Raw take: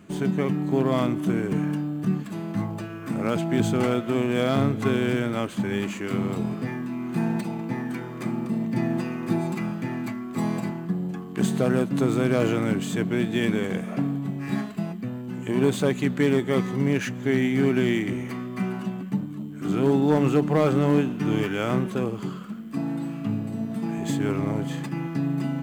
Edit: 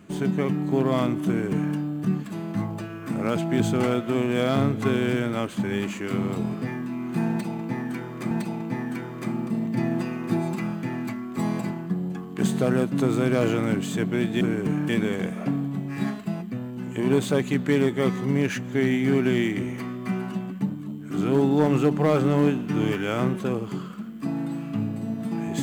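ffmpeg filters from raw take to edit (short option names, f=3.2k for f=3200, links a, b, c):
-filter_complex "[0:a]asplit=4[a][b][c][d];[a]atrim=end=8.312[e];[b]atrim=start=7.298:end=13.402[f];[c]atrim=start=1.268:end=1.752[g];[d]atrim=start=13.398[h];[e][f]acrossfade=d=0.004:c1=hsin:c2=hsin[i];[i][g]acrossfade=d=0.004:c1=hsin:c2=hsin[j];[j][h]acrossfade=d=0.004:c1=hsin:c2=hsin"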